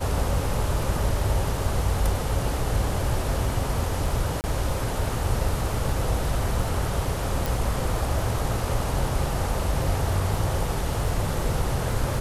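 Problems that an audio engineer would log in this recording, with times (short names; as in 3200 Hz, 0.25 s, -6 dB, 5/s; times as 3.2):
crackle 11/s
4.41–4.44 gap 29 ms
7.46 pop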